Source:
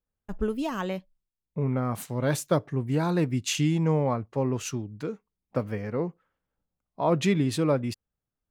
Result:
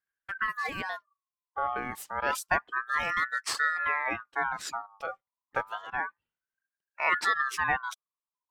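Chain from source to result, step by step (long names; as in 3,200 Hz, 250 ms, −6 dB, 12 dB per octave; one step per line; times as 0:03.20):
reverb reduction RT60 1.1 s
ring modulator whose carrier an LFO sweeps 1,300 Hz, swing 25%, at 0.29 Hz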